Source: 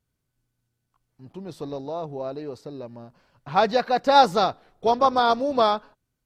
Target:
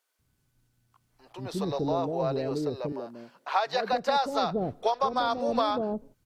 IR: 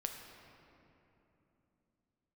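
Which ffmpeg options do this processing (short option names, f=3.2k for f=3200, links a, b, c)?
-filter_complex "[0:a]acrossover=split=490[a][b];[a]adelay=190[c];[c][b]amix=inputs=2:normalize=0,acompressor=threshold=-29dB:ratio=12,asettb=1/sr,asplit=3[d][e][f];[d]atrim=end=2.924[g];[e]atrim=start=2.92:end=3.93,asetpts=PTS-STARTPTS,afade=t=in:d=0.004:c=qsin,afade=t=out:st=1.006:d=0.004:c=qsin,highpass=360[h];[f]atrim=start=3.926[i];[g][h]acrossfade=d=0.004:c1=hsin:c2=qsin[j];[j][i]acrossfade=d=0.004:c1=qsin:c2=hsin,volume=6.5dB"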